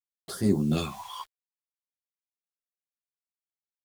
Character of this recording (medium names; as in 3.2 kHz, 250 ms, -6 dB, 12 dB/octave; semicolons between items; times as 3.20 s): a quantiser's noise floor 8-bit, dither none; phasing stages 2, 0.61 Hz, lowest notch 210–2600 Hz; random-step tremolo 2.8 Hz; a shimmering, thickened sound